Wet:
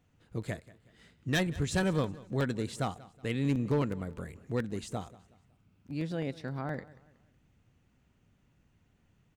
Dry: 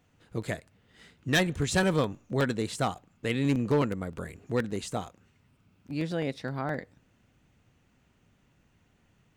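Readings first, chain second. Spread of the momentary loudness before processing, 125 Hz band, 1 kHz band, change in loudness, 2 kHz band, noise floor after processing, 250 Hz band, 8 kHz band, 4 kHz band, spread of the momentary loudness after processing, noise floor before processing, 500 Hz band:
12 LU, −1.5 dB, −5.5 dB, −4.0 dB, −6.0 dB, −70 dBFS, −3.0 dB, −6.0 dB, −6.0 dB, 12 LU, −68 dBFS, −5.0 dB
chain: low-shelf EQ 230 Hz +6 dB
on a send: repeating echo 185 ms, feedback 37%, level −20 dB
on the sum: level −6 dB

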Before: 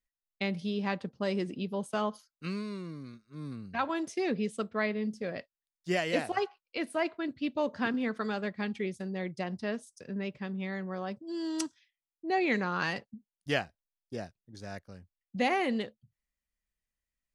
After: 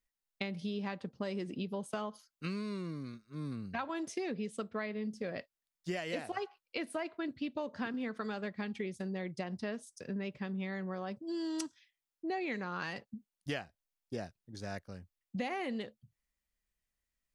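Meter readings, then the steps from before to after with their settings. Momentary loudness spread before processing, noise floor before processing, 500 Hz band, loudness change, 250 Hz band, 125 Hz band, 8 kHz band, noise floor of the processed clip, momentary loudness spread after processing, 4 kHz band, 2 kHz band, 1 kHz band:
14 LU, below −85 dBFS, −6.0 dB, −6.0 dB, −4.5 dB, −3.0 dB, −4.0 dB, below −85 dBFS, 7 LU, −6.0 dB, −7.0 dB, −7.5 dB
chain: downward compressor, threshold −36 dBFS, peak gain reduction 12 dB
level +1.5 dB

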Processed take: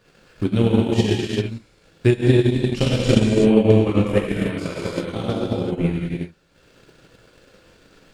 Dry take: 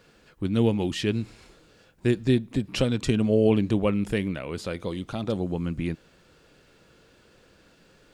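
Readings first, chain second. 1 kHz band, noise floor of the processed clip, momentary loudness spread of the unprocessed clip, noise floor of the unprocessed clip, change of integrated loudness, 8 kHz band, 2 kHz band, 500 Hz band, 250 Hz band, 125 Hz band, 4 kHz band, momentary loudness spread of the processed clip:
+6.0 dB, −56 dBFS, 11 LU, −59 dBFS, +6.5 dB, +5.5 dB, +6.0 dB, +7.0 dB, +6.0 dB, +8.0 dB, +6.0 dB, 12 LU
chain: reverb whose tail is shaped and stops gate 410 ms flat, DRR −8 dB
transient designer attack +10 dB, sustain −9 dB
level −3.5 dB

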